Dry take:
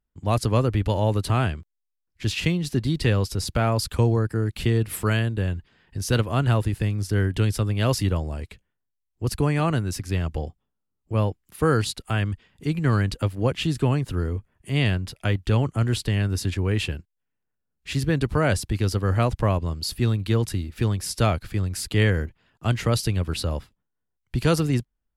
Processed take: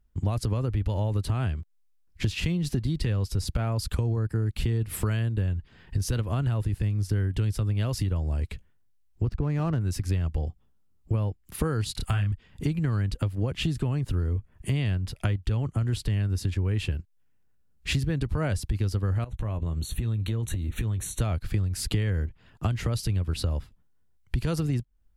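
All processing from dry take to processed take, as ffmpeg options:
-filter_complex "[0:a]asettb=1/sr,asplit=3[a][b][c];[a]atrim=end=9.264[d];[b]atrim=start=9.26:end=9.81,asetpts=PTS-STARTPTS,afade=t=in:d=0.004:c=qsin,afade=t=out:st=0.546:d=0.004:c=qsin,highshelf=f=2.6k:g=-10,adynamicsmooth=sensitivity=8:basefreq=1.5k[e];[c]atrim=start=9.806[f];[d][e]acrossfade=d=0.004:c1=hsin:c2=qsin[g];[g][f]acrossfade=d=0.004:c1=qsin:c2=hsin,asettb=1/sr,asplit=3[h][i][j];[h]atrim=end=11.924[k];[i]atrim=start=11.92:end=12.32,asetpts=PTS-STARTPTS,afade=t=in:d=0.004:c=qsin,afade=t=out:st=0.396:d=0.004:c=qsin,equalizer=f=390:w=0.92:g=-8.5,asplit=2[l][m];[m]adelay=30,volume=-3dB[n];[l][n]amix=inputs=2:normalize=0,atrim=end_sample=17640[o];[j]atrim=start=12.316[p];[k][o]acrossfade=d=0.004:c1=hsin:c2=qsin[q];[q][p]acrossfade=d=0.004:c1=qsin:c2=hsin,asettb=1/sr,asplit=3[r][s][t];[r]atrim=end=19.244[u];[s]atrim=start=19.24:end=21.21,asetpts=PTS-STARTPTS,afade=t=in:d=0.004:c=qsin,afade=t=out:st=1.966:d=0.004:c=qsin,acompressor=threshold=-34dB:ratio=12:attack=3.2:release=140:knee=1:detection=peak,asuperstop=centerf=5000:order=20:qfactor=3.7,asplit=2[v][w];[w]adelay=18,volume=-12dB[x];[v][x]amix=inputs=2:normalize=0,atrim=end_sample=86877[y];[t]atrim=start=21.206[z];[u][y]acrossfade=d=0.004:c1=hsin:c2=qsin[aa];[aa][z]acrossfade=d=0.004:c1=qsin:c2=hsin,lowshelf=f=140:g=12,alimiter=limit=-9.5dB:level=0:latency=1,acompressor=threshold=-29dB:ratio=8,volume=5dB"

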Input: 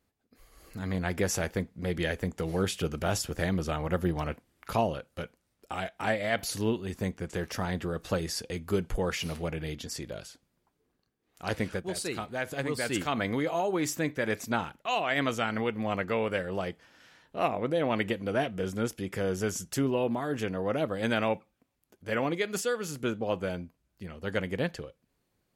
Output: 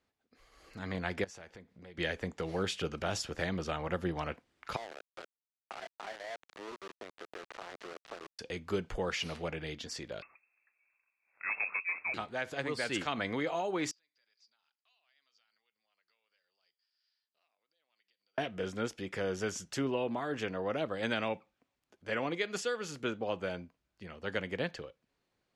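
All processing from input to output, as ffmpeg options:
-filter_complex "[0:a]asettb=1/sr,asplit=3[a][b][c];[a]atrim=end=1.244[d];[b]atrim=start=1.24:end=1.98,asetpts=PTS-STARTPTS,afade=t=in:d=0.004:c=qsin,afade=t=out:st=0.736:d=0.004:c=qsin,lowpass=12k,acompressor=threshold=-45dB:ratio=5:attack=3.2:release=140:knee=1:detection=peak[e];[c]atrim=start=1.976[f];[d][e]acrossfade=d=0.004:c1=hsin:c2=qsin[g];[g][f]acrossfade=d=0.004:c1=qsin:c2=hsin,asettb=1/sr,asplit=3[h][i][j];[h]atrim=end=4.764[k];[i]atrim=start=4.76:end=8.39,asetpts=PTS-STARTPTS,afade=t=in:d=0.004:c=qsin,afade=t=out:st=3.626:d=0.004:c=qsin,highpass=f=250:w=0.5412,highpass=f=250:w=1.3066,equalizer=f=280:t=q:w=4:g=-5,equalizer=f=390:t=q:w=4:g=7,equalizer=f=680:t=q:w=4:g=9,equalizer=f=1.2k:t=q:w=4:g=4,lowpass=f=2.3k:w=0.5412,lowpass=f=2.3k:w=1.3066,acompressor=threshold=-39dB:ratio=5:attack=3.2:release=140:knee=1:detection=peak,aeval=exprs='val(0)*gte(abs(val(0)),0.0112)':c=same[l];[j]atrim=start=8.386[m];[k][l]acrossfade=d=0.004:c1=hsin:c2=qsin[n];[n][m]acrossfade=d=0.004:c1=qsin:c2=hsin,asettb=1/sr,asplit=3[o][p][q];[o]atrim=end=10.224[r];[p]atrim=start=10.22:end=12.14,asetpts=PTS-STARTPTS,afade=t=in:d=0.004:c=qsin,afade=t=out:st=1.916:d=0.004:c=qsin,volume=27dB,asoftclip=hard,volume=-27dB,lowpass=f=2.3k:t=q:w=0.5098,lowpass=f=2.3k:t=q:w=0.6013,lowpass=f=2.3k:t=q:w=0.9,lowpass=f=2.3k:t=q:w=2.563,afreqshift=-2700[s];[q]atrim=start=12.136[t];[r][s]acrossfade=d=0.004:c1=hsin:c2=qsin[u];[u][t]acrossfade=d=0.004:c1=qsin:c2=hsin,asettb=1/sr,asplit=3[v][w][x];[v]atrim=end=13.914[y];[w]atrim=start=13.91:end=18.38,asetpts=PTS-STARTPTS,afade=t=in:d=0.004:c=qsin,afade=t=out:st=4.466:d=0.004:c=qsin,acompressor=threshold=-36dB:ratio=10:attack=3.2:release=140:knee=1:detection=peak,bandpass=f=4.8k:t=q:w=15,aemphasis=mode=reproduction:type=50fm[z];[x]atrim=start=18.376[aa];[y][z]acrossfade=d=0.004:c1=hsin:c2=qsin[ab];[ab][aa]acrossfade=d=0.004:c1=qsin:c2=hsin,lowpass=5.5k,lowshelf=f=330:g=-9.5,acrossover=split=360|3000[ac][ad][ae];[ad]acompressor=threshold=-32dB:ratio=6[af];[ac][af][ae]amix=inputs=3:normalize=0"

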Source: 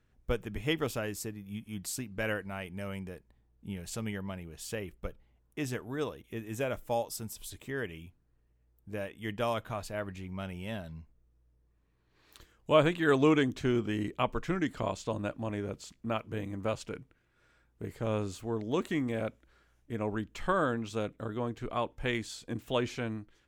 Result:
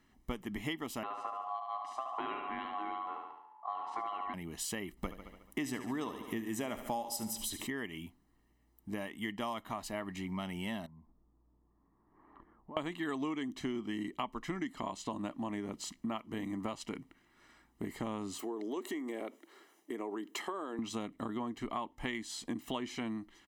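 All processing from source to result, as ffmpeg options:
-filter_complex "[0:a]asettb=1/sr,asplit=3[a][b][c];[a]atrim=end=1.034[d];[b]atrim=start=1.03:end=4.34,asetpts=PTS-STARTPTS,afade=t=in:d=0.004:c=qsin,afade=t=out:st=3.306:d=0.004:c=qsin,lowpass=1.6k,aeval=exprs='val(0)*sin(2*PI*920*n/s)':c=same,aecho=1:1:72|144|216|288|360|432:0.473|0.246|0.128|0.0665|0.0346|0.018,atrim=end_sample=145971[e];[c]atrim=start=4.336[f];[d][e]acrossfade=d=0.004:c1=hsin:c2=qsin[g];[g][f]acrossfade=d=0.004:c1=qsin:c2=hsin,asettb=1/sr,asplit=3[h][i][j];[h]atrim=end=4.974[k];[i]atrim=start=4.97:end=7.67,asetpts=PTS-STARTPTS,afade=t=in:d=0.004:c=qsin,afade=t=out:st=2.696:d=0.004:c=qsin,aecho=1:1:72|144|216|288|360|432:0.224|0.128|0.0727|0.0415|0.0236|0.0135,atrim=end_sample=119070,acontrast=69[l];[j]atrim=start=7.666[m];[k][l]acrossfade=d=0.004:c1=hsin:c2=qsin[n];[n][m]acrossfade=d=0.004:c1=qsin:c2=hsin,asettb=1/sr,asplit=3[o][p][q];[o]atrim=end=10.864[r];[p]atrim=start=10.86:end=12.77,asetpts=PTS-STARTPTS,afade=t=in:d=0.004:c=qsin,afade=t=out:st=1.906:d=0.004:c=qsin,lowpass=f=1.3k:w=0.5412,lowpass=f=1.3k:w=1.3066,acompressor=threshold=-56dB:ratio=4:attack=3.2:release=140:knee=1:detection=peak[s];[q]atrim=start=12.766[t];[r][s]acrossfade=d=0.004:c1=hsin:c2=qsin[u];[u][t]acrossfade=d=0.004:c1=qsin:c2=hsin,asettb=1/sr,asplit=3[v][w][x];[v]atrim=end=18.394[y];[w]atrim=start=18.39:end=20.79,asetpts=PTS-STARTPTS,afade=t=in:d=0.004:c=qsin,afade=t=out:st=2.396:d=0.004:c=qsin,highshelf=f=9.5k:g=8.5,acompressor=threshold=-40dB:ratio=4:attack=3.2:release=140:knee=1:detection=peak,highpass=f=390:t=q:w=3[z];[x]atrim=start=20.786[aa];[y][z]acrossfade=d=0.004:c1=hsin:c2=qsin[ab];[ab][aa]acrossfade=d=0.004:c1=qsin:c2=hsin,lowshelf=f=170:t=q:w=1.5:g=-12,aecho=1:1:1:0.69,acompressor=threshold=-41dB:ratio=6,volume=5.5dB"

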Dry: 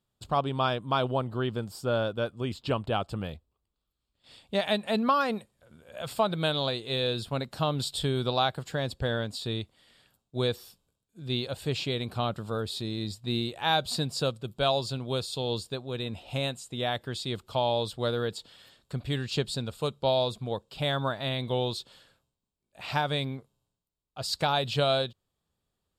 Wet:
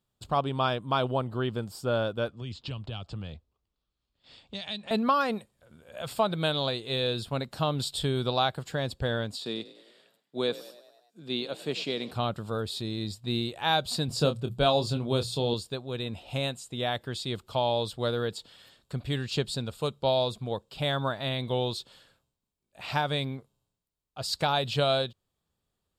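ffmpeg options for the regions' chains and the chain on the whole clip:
-filter_complex "[0:a]asettb=1/sr,asplit=3[a][b][c];[a]atrim=end=2.284[d];[b]atrim=start=2.28:end=4.91,asetpts=PTS-STARTPTS,afade=t=in:d=0.004:c=qsin,afade=t=out:st=2.626:d=0.004:c=qsin,lowpass=f=6.7k:w=0.5412,lowpass=f=6.7k:w=1.3066,acrossover=split=150|3000[e][f][g];[f]acompressor=threshold=-41dB:ratio=10:attack=3.2:release=140:knee=2.83:detection=peak[h];[e][h][g]amix=inputs=3:normalize=0[i];[c]atrim=start=4.906[j];[d][i]acrossfade=d=0.004:c1=hsin:c2=qsin[k];[k][j]acrossfade=d=0.004:c1=qsin:c2=hsin,asettb=1/sr,asplit=3[l][m][n];[l]atrim=end=9.364[o];[m]atrim=start=9.36:end=12.11,asetpts=PTS-STARTPTS,afade=t=in:d=0.004:c=qsin,afade=t=out:st=2.746:d=0.004:c=qsin,highpass=f=180:w=0.5412,highpass=f=180:w=1.3066,highshelf=f=10k:g=-8,asplit=7[p][q][r][s][t][u][v];[q]adelay=97,afreqshift=38,volume=-17dB[w];[r]adelay=194,afreqshift=76,volume=-21.6dB[x];[s]adelay=291,afreqshift=114,volume=-26.2dB[y];[t]adelay=388,afreqshift=152,volume=-30.7dB[z];[u]adelay=485,afreqshift=190,volume=-35.3dB[aa];[v]adelay=582,afreqshift=228,volume=-39.9dB[ab];[p][w][x][y][z][aa][ab]amix=inputs=7:normalize=0,atrim=end_sample=121275[ac];[n]atrim=start=12.106[ad];[o][ac]acrossfade=d=0.004:c1=hsin:c2=qsin[ae];[ae][ad]acrossfade=d=0.004:c1=qsin:c2=hsin,asettb=1/sr,asplit=3[af][ag][ah];[af]atrim=end=14.084[ai];[ag]atrim=start=14.08:end=15.54,asetpts=PTS-STARTPTS,afade=t=in:d=0.004:c=qsin,afade=t=out:st=1.456:d=0.004:c=qsin,lowshelf=f=410:g=7,bandreject=f=60:t=h:w=6,bandreject=f=120:t=h:w=6,bandreject=f=180:t=h:w=6,asplit=2[aj][ak];[ak]adelay=26,volume=-8.5dB[al];[aj][al]amix=inputs=2:normalize=0,atrim=end_sample=64386[am];[ah]atrim=start=15.536[an];[ai][am]acrossfade=d=0.004:c1=hsin:c2=qsin[ao];[ao][an]acrossfade=d=0.004:c1=qsin:c2=hsin"

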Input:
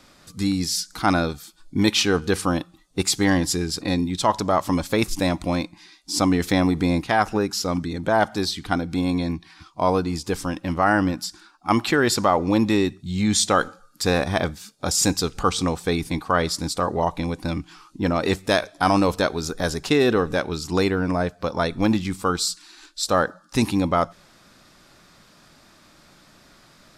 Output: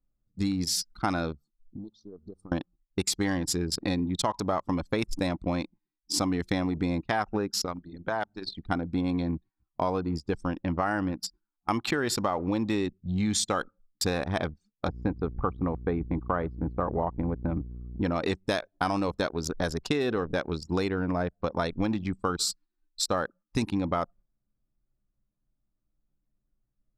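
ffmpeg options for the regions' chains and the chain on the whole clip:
-filter_complex "[0:a]asettb=1/sr,asplit=3[a][b][c];[a]atrim=end=1.354[d];[b]atrim=start=1.35:end=2.52,asetpts=PTS-STARTPTS,afade=t=in:d=0.004:c=qsin,afade=t=out:st=1.166:d=0.004:c=qsin,acompressor=threshold=-34dB:ratio=4:attack=3.2:release=140:knee=1:detection=peak,asuperstop=centerf=2200:order=8:qfactor=0.98[e];[c]atrim=start=2.516[f];[d][e]acrossfade=d=0.004:c1=hsin:c2=qsin[g];[g][f]acrossfade=d=0.004:c1=qsin:c2=hsin,asettb=1/sr,asplit=3[h][i][j];[h]atrim=end=7.654[k];[i]atrim=start=7.65:end=8.55,asetpts=PTS-STARTPTS,afade=t=in:d=0.004:c=qsin,afade=t=out:st=0.896:d=0.004:c=qsin,bandreject=f=50:t=h:w=6,bandreject=f=100:t=h:w=6,bandreject=f=150:t=h:w=6,bandreject=f=200:t=h:w=6,bandreject=f=250:t=h:w=6,bandreject=f=300:t=h:w=6,bandreject=f=350:t=h:w=6,bandreject=f=400:t=h:w=6,acrossover=split=790|4400[l][m][n];[l]acompressor=threshold=-33dB:ratio=4[o];[m]acompressor=threshold=-28dB:ratio=4[p];[n]acompressor=threshold=-44dB:ratio=4[q];[o][p][q]amix=inputs=3:normalize=0[r];[j]atrim=start=8.546[s];[k][r]acrossfade=d=0.004:c1=hsin:c2=qsin[t];[t][s]acrossfade=d=0.004:c1=qsin:c2=hsin,asettb=1/sr,asplit=3[u][v][w];[u]atrim=end=14.884[x];[v]atrim=start=14.88:end=18.02,asetpts=PTS-STARTPTS,afade=t=in:d=0.004:c=qsin,afade=t=out:st=3.136:d=0.004:c=qsin,lowpass=1.5k,aeval=exprs='val(0)+0.02*(sin(2*PI*60*n/s)+sin(2*PI*2*60*n/s)/2+sin(2*PI*3*60*n/s)/3+sin(2*PI*4*60*n/s)/4+sin(2*PI*5*60*n/s)/5)':c=same[y];[w]atrim=start=18.016[z];[x][y]acrossfade=d=0.004:c1=hsin:c2=qsin[aa];[aa][z]acrossfade=d=0.004:c1=qsin:c2=hsin,agate=range=-8dB:threshold=-41dB:ratio=16:detection=peak,anlmdn=158,acompressor=threshold=-23dB:ratio=6,volume=-1dB"

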